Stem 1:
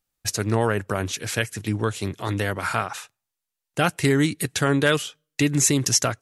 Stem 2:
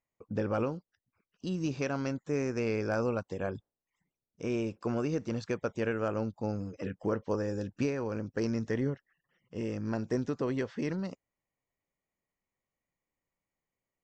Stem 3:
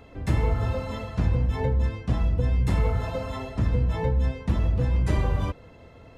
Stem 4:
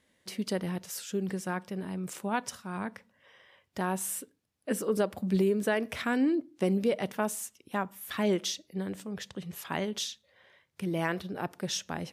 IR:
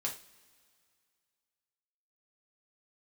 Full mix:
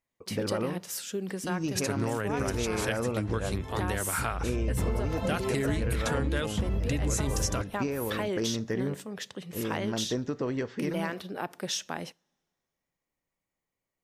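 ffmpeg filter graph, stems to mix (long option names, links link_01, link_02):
-filter_complex "[0:a]adelay=1500,volume=-4.5dB[link_01];[1:a]volume=0.5dB,asplit=2[link_02][link_03];[link_03]volume=-13dB[link_04];[2:a]adelay=2100,afade=type=in:start_time=4.36:duration=0.48:silence=0.266073[link_05];[3:a]agate=range=-33dB:threshold=-55dB:ratio=3:detection=peak,highpass=frequency=310:poles=1,acompressor=threshold=-29dB:ratio=6,volume=2.5dB,asplit=2[link_06][link_07];[link_07]volume=-23dB[link_08];[4:a]atrim=start_sample=2205[link_09];[link_04][link_08]amix=inputs=2:normalize=0[link_10];[link_10][link_09]afir=irnorm=-1:irlink=0[link_11];[link_01][link_02][link_05][link_06][link_11]amix=inputs=5:normalize=0,acompressor=threshold=-25dB:ratio=6"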